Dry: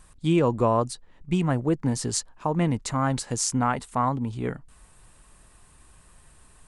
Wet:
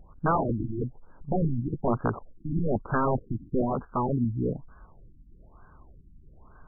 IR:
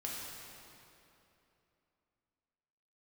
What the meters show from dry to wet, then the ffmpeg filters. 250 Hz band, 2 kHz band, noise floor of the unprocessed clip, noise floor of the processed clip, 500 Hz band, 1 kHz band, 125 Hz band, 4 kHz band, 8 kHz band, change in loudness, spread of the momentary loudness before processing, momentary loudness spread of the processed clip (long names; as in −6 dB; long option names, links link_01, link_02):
−3.0 dB, −3.0 dB, −55 dBFS, −54 dBFS, −2.5 dB, −3.0 dB, −2.5 dB, below −40 dB, below −40 dB, −3.5 dB, 9 LU, 8 LU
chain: -af "aeval=exprs='(mod(9.44*val(0)+1,2)-1)/9.44':channel_layout=same,lowpass=frequency=2200:width_type=q:width=3.1,afftfilt=real='re*lt(b*sr/1024,330*pow(1700/330,0.5+0.5*sin(2*PI*1.1*pts/sr)))':imag='im*lt(b*sr/1024,330*pow(1700/330,0.5+0.5*sin(2*PI*1.1*pts/sr)))':win_size=1024:overlap=0.75,volume=3dB"